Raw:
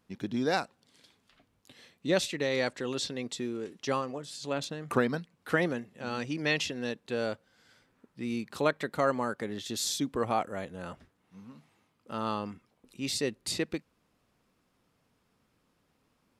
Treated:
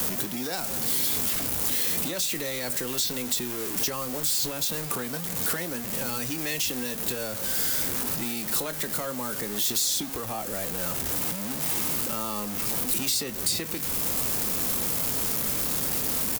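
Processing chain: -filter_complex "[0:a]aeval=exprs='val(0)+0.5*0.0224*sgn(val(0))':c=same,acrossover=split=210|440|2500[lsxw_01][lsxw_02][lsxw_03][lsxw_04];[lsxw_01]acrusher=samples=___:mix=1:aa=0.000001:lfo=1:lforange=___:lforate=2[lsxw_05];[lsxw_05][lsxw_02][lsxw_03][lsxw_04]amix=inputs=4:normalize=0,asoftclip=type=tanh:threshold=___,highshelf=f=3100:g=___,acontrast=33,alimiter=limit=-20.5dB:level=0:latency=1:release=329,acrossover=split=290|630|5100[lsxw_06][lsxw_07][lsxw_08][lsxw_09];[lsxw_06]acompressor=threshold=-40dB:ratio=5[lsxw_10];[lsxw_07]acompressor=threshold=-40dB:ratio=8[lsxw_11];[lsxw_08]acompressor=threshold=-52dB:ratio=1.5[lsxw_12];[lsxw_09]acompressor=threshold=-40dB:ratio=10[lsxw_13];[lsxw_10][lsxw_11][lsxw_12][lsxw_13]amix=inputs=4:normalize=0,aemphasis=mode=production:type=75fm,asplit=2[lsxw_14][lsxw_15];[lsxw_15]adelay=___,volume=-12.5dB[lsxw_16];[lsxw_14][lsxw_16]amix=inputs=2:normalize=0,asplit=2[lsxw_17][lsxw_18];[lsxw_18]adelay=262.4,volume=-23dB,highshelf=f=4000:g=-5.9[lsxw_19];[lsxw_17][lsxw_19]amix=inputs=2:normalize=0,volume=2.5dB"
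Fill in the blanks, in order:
36, 36, -18.5dB, -4.5, 24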